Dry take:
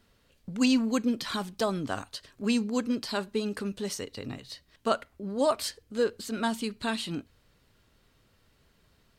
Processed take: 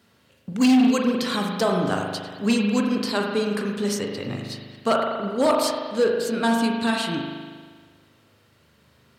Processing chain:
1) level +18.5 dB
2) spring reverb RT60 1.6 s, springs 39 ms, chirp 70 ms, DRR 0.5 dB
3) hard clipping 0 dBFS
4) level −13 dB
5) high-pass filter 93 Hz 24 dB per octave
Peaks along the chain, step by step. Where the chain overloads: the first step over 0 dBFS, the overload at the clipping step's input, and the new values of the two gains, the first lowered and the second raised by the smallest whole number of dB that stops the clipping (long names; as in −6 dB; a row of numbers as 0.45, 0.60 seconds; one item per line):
+7.5, +8.0, 0.0, −13.0, −8.0 dBFS
step 1, 8.0 dB
step 1 +10.5 dB, step 4 −5 dB